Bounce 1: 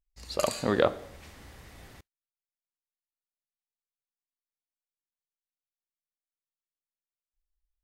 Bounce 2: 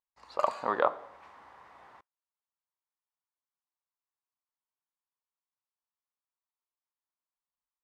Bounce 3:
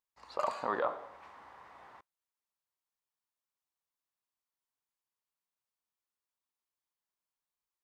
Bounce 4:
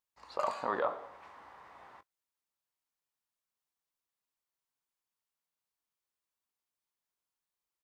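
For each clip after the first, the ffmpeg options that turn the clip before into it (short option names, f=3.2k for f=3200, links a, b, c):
-af "bandpass=f=1k:t=q:w=3.3:csg=0,volume=8.5dB"
-af "alimiter=limit=-19.5dB:level=0:latency=1:release=17"
-filter_complex "[0:a]asplit=2[a][b];[b]adelay=21,volume=-13dB[c];[a][c]amix=inputs=2:normalize=0"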